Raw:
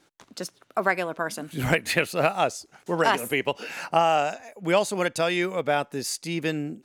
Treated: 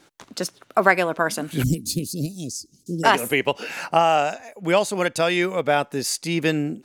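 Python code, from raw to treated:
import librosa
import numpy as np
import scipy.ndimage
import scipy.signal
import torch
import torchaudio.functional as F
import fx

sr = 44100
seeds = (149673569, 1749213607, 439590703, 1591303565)

y = fx.ellip_bandstop(x, sr, low_hz=290.0, high_hz=5000.0, order=3, stop_db=80, at=(1.62, 3.03), fade=0.02)
y = fx.rider(y, sr, range_db=4, speed_s=2.0)
y = y * librosa.db_to_amplitude(4.0)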